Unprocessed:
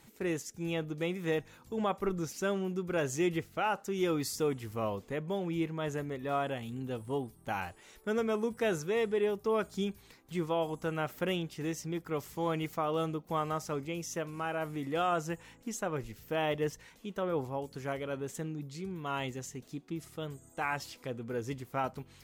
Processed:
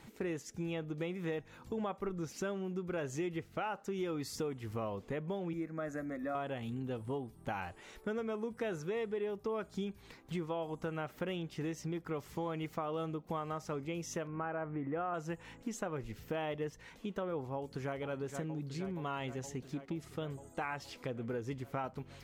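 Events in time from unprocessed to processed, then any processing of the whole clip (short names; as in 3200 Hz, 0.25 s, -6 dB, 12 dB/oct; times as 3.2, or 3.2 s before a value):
5.53–6.35 fixed phaser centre 610 Hz, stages 8
14.27–15.14 LPF 2000 Hz 24 dB/oct
17.55–17.97 echo throw 0.47 s, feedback 75%, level -10 dB
whole clip: high shelf 5700 Hz -11.5 dB; compressor 4:1, threshold -41 dBFS; gain +4.5 dB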